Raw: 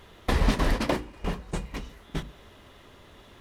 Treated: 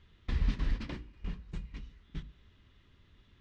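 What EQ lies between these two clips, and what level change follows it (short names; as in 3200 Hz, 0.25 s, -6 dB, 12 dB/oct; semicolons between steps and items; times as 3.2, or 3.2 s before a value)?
air absorption 170 m; passive tone stack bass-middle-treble 6-0-2; +6.5 dB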